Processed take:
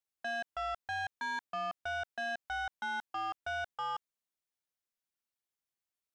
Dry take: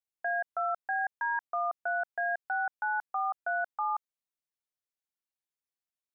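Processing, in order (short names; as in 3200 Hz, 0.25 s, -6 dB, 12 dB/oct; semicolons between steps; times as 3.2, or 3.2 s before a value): soft clip -33 dBFS, distortion -11 dB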